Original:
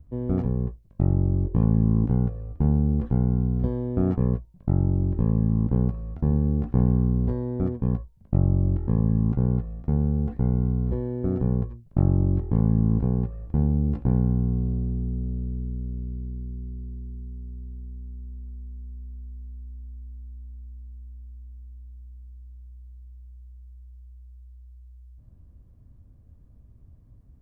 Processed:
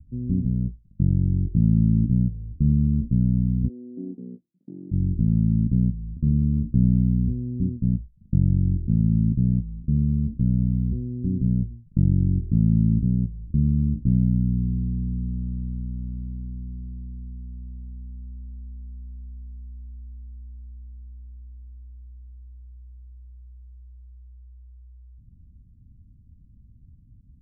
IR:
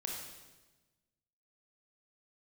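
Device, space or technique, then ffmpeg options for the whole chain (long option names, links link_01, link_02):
the neighbour's flat through the wall: -filter_complex "[0:a]lowpass=frequency=270:width=0.5412,lowpass=frequency=270:width=1.3066,equalizer=frequency=180:width_type=o:width=0.77:gain=4,asplit=3[link_01][link_02][link_03];[link_01]afade=type=out:start_time=3.68:duration=0.02[link_04];[link_02]highpass=frequency=300:width=0.5412,highpass=frequency=300:width=1.3066,afade=type=in:start_time=3.68:duration=0.02,afade=type=out:start_time=4.91:duration=0.02[link_05];[link_03]afade=type=in:start_time=4.91:duration=0.02[link_06];[link_04][link_05][link_06]amix=inputs=3:normalize=0"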